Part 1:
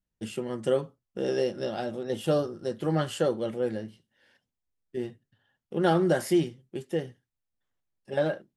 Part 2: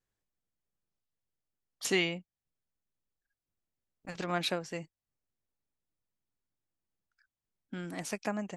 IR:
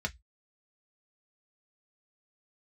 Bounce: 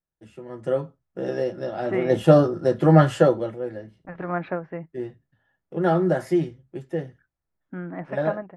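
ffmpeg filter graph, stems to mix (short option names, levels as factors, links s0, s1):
-filter_complex "[0:a]highshelf=f=7300:g=-9.5,volume=0.944,afade=t=in:st=1.77:d=0.31:silence=0.251189,afade=t=out:st=3.11:d=0.46:silence=0.223872,asplit=2[s0][s1];[s1]volume=0.562[s2];[1:a]lowpass=f=1800:w=0.5412,lowpass=f=1800:w=1.3066,volume=0.447,asplit=2[s3][s4];[s4]volume=0.188[s5];[2:a]atrim=start_sample=2205[s6];[s2][s5]amix=inputs=2:normalize=0[s7];[s7][s6]afir=irnorm=-1:irlink=0[s8];[s0][s3][s8]amix=inputs=3:normalize=0,dynaudnorm=f=400:g=3:m=3.98"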